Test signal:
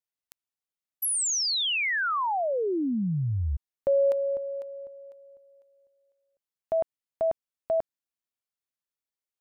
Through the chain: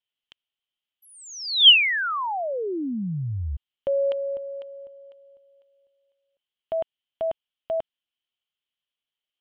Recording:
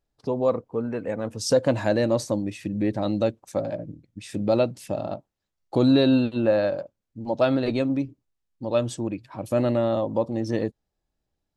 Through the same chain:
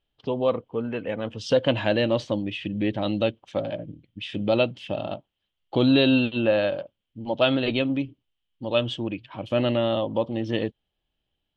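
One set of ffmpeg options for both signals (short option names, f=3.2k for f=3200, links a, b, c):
-af "lowpass=f=3.1k:t=q:w=9.6,volume=-1dB"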